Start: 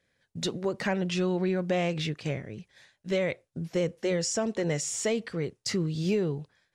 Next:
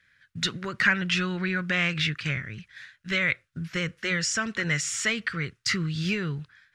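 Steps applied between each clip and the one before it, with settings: FFT filter 120 Hz 0 dB, 480 Hz -14 dB, 810 Hz -13 dB, 1.4 kHz +11 dB, 8.3 kHz -4 dB; trim +4.5 dB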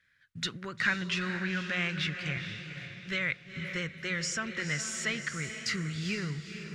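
echo that smears into a reverb 469 ms, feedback 42%, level -8 dB; trim -6.5 dB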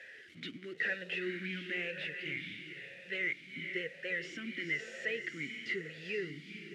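one-bit delta coder 64 kbps, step -42 dBFS; talking filter e-i 1 Hz; trim +7.5 dB

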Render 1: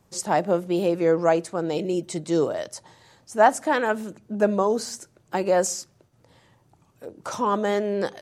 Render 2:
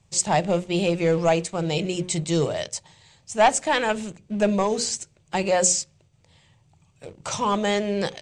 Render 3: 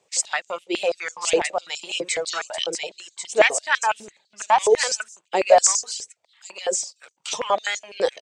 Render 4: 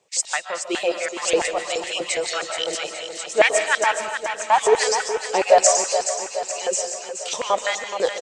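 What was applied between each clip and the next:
hum notches 60/120/180/240/300/360/420/480/540 Hz; waveshaping leveller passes 1; FFT filter 150 Hz 0 dB, 260 Hz -13 dB, 800 Hz -9 dB, 1.5 kHz -12 dB, 2.4 kHz 0 dB, 3.4 kHz -1 dB, 5.4 kHz -4 dB, 8.1 kHz 0 dB, 12 kHz -27 dB; trim +6.5 dB
reverb removal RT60 1.1 s; delay 1090 ms -5.5 dB; step-sequenced high-pass 12 Hz 450–6500 Hz
feedback delay 423 ms, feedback 59%, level -9 dB; reverberation RT60 0.50 s, pre-delay 105 ms, DRR 7.5 dB

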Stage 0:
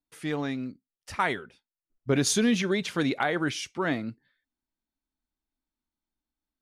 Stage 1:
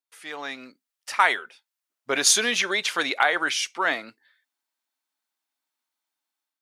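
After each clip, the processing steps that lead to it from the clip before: high-pass 780 Hz 12 dB/octave; level rider gain up to 9 dB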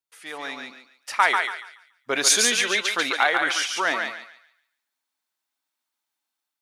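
thinning echo 142 ms, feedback 31%, high-pass 700 Hz, level -3.5 dB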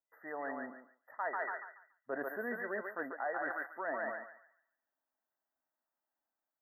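FFT band-reject 2–12 kHz; fifteen-band graphic EQ 250 Hz +5 dB, 630 Hz +11 dB, 10 kHz -12 dB; reverse; compression 5:1, threshold -29 dBFS, peak gain reduction 16.5 dB; reverse; trim -7 dB

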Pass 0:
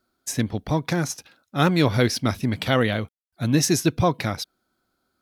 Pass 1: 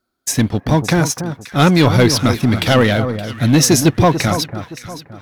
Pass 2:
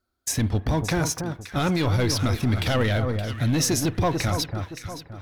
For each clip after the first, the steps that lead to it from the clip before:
waveshaping leveller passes 2; echo whose repeats swap between lows and highs 285 ms, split 1.4 kHz, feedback 56%, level -9 dB; trim +2.5 dB
resonant low shelf 110 Hz +8.5 dB, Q 1.5; peak limiter -9.5 dBFS, peak gain reduction 11 dB; on a send at -17 dB: reverberation, pre-delay 31 ms; on the sum: trim -5.5 dB

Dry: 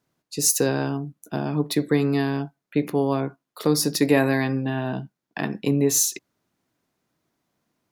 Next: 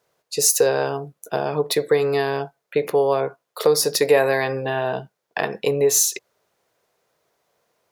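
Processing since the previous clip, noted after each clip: resonant low shelf 360 Hz -8.5 dB, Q 3; compression 1.5:1, threshold -27 dBFS, peak gain reduction 5.5 dB; trim +6.5 dB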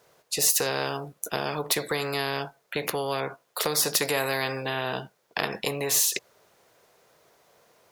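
spectrum-flattening compressor 2:1; trim -1.5 dB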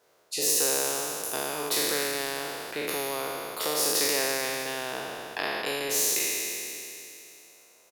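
spectral sustain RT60 2.91 s; resonant low shelf 220 Hz -6 dB, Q 1.5; frequency-shifting echo 161 ms, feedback 30%, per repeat -120 Hz, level -19 dB; trim -7 dB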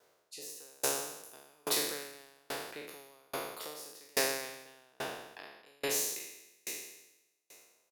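sawtooth tremolo in dB decaying 1.2 Hz, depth 36 dB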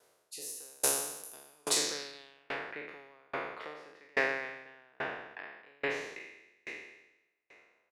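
low-pass sweep 11 kHz -> 2 kHz, 1.54–2.62 s

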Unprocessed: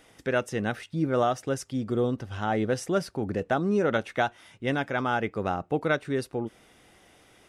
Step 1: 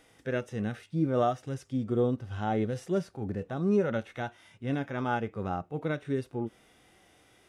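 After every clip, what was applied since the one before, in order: harmonic-percussive split percussive -15 dB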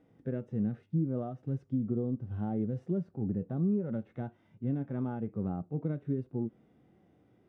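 compression 5:1, threshold -30 dBFS, peak gain reduction 9 dB; band-pass filter 180 Hz, Q 1.2; trim +5.5 dB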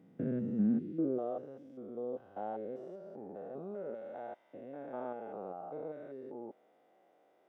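spectrogram pixelated in time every 200 ms; high-pass sweep 180 Hz -> 610 Hz, 0.39–1.55 s; trim +1 dB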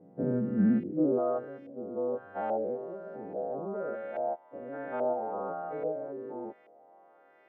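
partials quantised in pitch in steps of 2 st; LFO low-pass saw up 1.2 Hz 590–2300 Hz; trim +6 dB

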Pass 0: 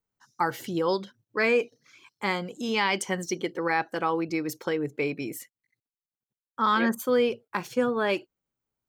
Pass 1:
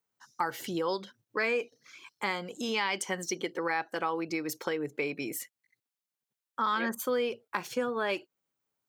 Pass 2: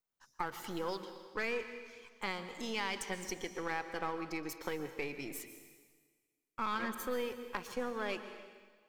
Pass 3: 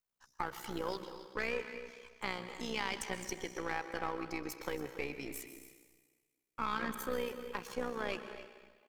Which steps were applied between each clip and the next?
high-pass 94 Hz; bass shelf 320 Hz -8 dB; compression 2:1, threshold -36 dBFS, peak gain reduction 9 dB; trim +3.5 dB
partial rectifier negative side -7 dB; plate-style reverb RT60 1.5 s, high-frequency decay 1×, pre-delay 110 ms, DRR 9.5 dB; trim -5 dB
AM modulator 62 Hz, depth 50%; delay 276 ms -15.5 dB; trim +2.5 dB

